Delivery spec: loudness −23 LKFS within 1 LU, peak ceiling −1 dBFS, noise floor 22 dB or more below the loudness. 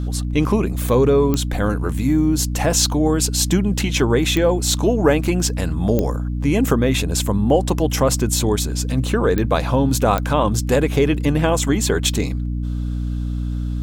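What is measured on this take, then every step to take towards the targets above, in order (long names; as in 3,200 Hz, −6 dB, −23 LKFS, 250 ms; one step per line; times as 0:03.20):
number of clicks 5; mains hum 60 Hz; hum harmonics up to 300 Hz; level of the hum −20 dBFS; integrated loudness −19.0 LKFS; sample peak −3.0 dBFS; target loudness −23.0 LKFS
→ click removal
hum removal 60 Hz, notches 5
level −4 dB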